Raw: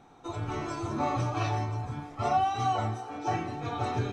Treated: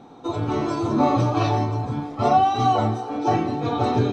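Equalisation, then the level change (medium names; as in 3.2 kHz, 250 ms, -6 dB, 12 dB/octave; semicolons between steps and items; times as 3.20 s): ten-band graphic EQ 125 Hz +6 dB, 250 Hz +12 dB, 500 Hz +9 dB, 1 kHz +6 dB, 4 kHz +9 dB; 0.0 dB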